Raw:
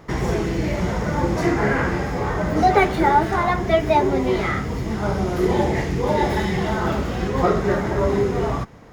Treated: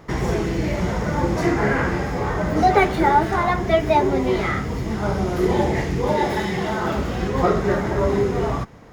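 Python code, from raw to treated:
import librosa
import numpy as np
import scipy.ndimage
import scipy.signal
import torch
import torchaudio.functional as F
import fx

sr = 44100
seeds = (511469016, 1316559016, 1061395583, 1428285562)

y = fx.low_shelf(x, sr, hz=88.0, db=-12.0, at=(6.14, 6.95))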